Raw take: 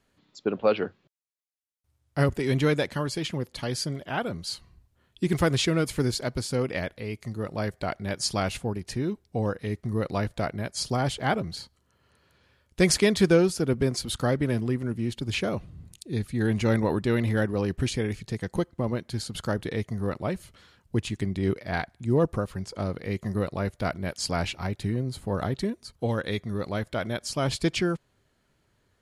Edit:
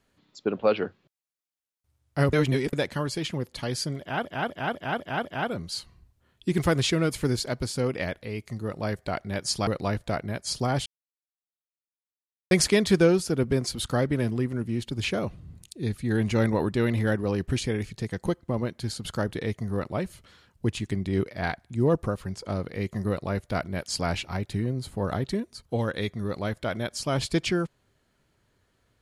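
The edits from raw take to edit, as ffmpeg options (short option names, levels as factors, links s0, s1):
-filter_complex "[0:a]asplit=11[s0][s1][s2][s3][s4][s5][s6][s7][s8][s9][s10];[s0]atrim=end=2.332[s11];[s1]atrim=start=2.328:end=2.732,asetpts=PTS-STARTPTS,areverse[s12];[s2]atrim=start=2.728:end=4.252[s13];[s3]atrim=start=3.998:end=4.252[s14];[s4]atrim=start=3.998:end=4.252[s15];[s5]atrim=start=3.998:end=4.252[s16];[s6]atrim=start=3.998:end=4.252[s17];[s7]atrim=start=3.998:end=8.422[s18];[s8]atrim=start=9.968:end=11.16,asetpts=PTS-STARTPTS,afade=t=out:st=1.188:d=0.004:c=hsin[s19];[s9]atrim=start=11.16:end=12.81,asetpts=PTS-STARTPTS,volume=0[s20];[s10]atrim=start=12.81,asetpts=PTS-STARTPTS,afade=t=in:d=0.004:c=hsin[s21];[s11][s12]acrossfade=d=0.004:c1=hsin:c2=hsin[s22];[s22][s13]acrossfade=d=0.004:c1=hsin:c2=hsin[s23];[s23][s14]acrossfade=d=0.004:c1=hsin:c2=hsin[s24];[s24][s15]acrossfade=d=0.004:c1=hsin:c2=hsin[s25];[s25][s16]acrossfade=d=0.004:c1=hsin:c2=hsin[s26];[s26][s17]acrossfade=d=0.004:c1=hsin:c2=hsin[s27];[s27][s18]acrossfade=d=0.004:c1=hsin:c2=hsin[s28];[s19][s20][s21]concat=n=3:v=0:a=1[s29];[s28][s29]acrossfade=d=0.004:c1=hsin:c2=hsin"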